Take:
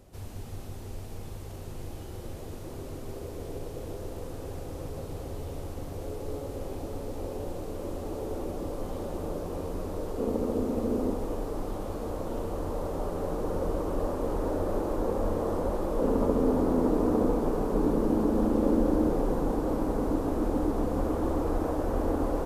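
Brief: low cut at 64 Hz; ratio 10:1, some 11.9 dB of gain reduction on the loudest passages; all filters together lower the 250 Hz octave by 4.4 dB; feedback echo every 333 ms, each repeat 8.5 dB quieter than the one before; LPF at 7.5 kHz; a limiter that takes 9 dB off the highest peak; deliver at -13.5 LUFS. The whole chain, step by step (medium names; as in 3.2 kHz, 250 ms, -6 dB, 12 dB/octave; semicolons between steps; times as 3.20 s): high-pass 64 Hz; low-pass 7.5 kHz; peaking EQ 250 Hz -5.5 dB; compression 10:1, threshold -36 dBFS; peak limiter -34 dBFS; feedback delay 333 ms, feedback 38%, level -8.5 dB; trim +29 dB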